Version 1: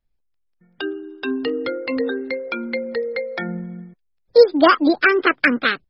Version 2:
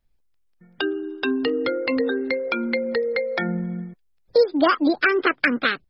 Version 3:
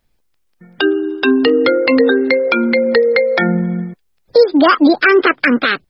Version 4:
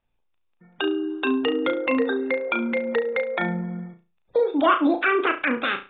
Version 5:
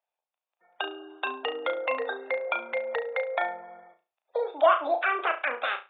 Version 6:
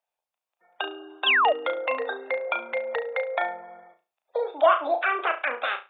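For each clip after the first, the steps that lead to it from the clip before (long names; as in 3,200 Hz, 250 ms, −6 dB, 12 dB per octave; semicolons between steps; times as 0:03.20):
downward compressor 2 to 1, threshold −27 dBFS, peak gain reduction 11.5 dB; level +4.5 dB
low-shelf EQ 90 Hz −10 dB; boost into a limiter +13 dB; level −1 dB
Chebyshev low-pass with heavy ripple 3,700 Hz, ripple 6 dB; on a send: flutter between parallel walls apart 6 metres, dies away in 0.3 s; on the sum: level −6.5 dB
automatic gain control gain up to 5 dB; four-pole ladder high-pass 580 Hz, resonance 55%
sound drawn into the spectrogram fall, 0:01.26–0:01.53, 530–3,600 Hz −21 dBFS; level +1.5 dB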